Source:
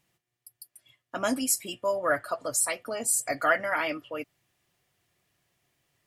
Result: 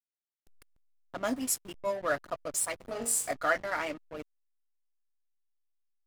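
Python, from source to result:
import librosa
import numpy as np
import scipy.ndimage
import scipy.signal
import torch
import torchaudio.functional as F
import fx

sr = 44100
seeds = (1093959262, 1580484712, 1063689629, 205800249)

y = fx.room_flutter(x, sr, wall_m=3.7, rt60_s=0.35, at=(2.79, 3.32), fade=0.02)
y = fx.backlash(y, sr, play_db=-29.0)
y = y * librosa.db_to_amplitude(-3.5)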